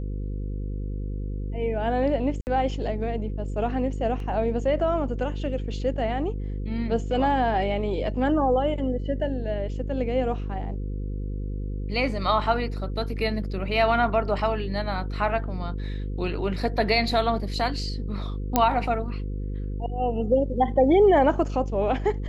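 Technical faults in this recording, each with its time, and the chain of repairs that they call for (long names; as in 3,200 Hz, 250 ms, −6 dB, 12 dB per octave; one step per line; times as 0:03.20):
mains buzz 50 Hz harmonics 10 −30 dBFS
0:02.41–0:02.47: drop-out 59 ms
0:04.20: drop-out 2.1 ms
0:18.56: click −5 dBFS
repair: click removal
hum removal 50 Hz, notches 10
repair the gap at 0:02.41, 59 ms
repair the gap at 0:04.20, 2.1 ms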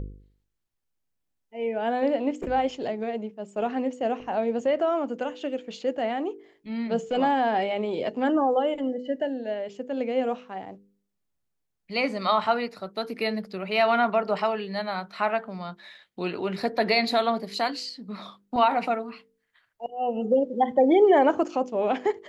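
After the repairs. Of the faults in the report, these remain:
none of them is left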